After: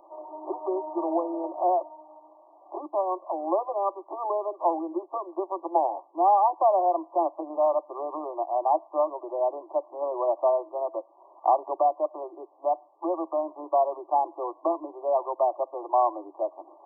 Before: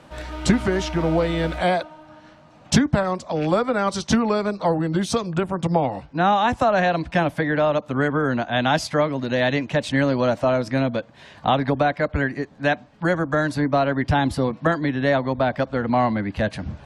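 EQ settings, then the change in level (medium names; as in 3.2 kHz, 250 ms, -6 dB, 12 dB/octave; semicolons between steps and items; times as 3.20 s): brick-wall FIR band-pass 320–1200 Hz; static phaser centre 460 Hz, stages 6; 0.0 dB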